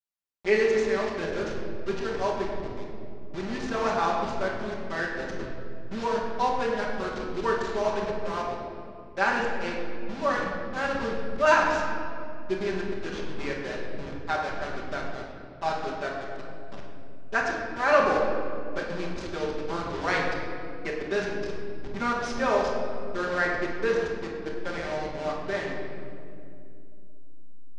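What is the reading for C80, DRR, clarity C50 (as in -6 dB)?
3.5 dB, -9.5 dB, 1.5 dB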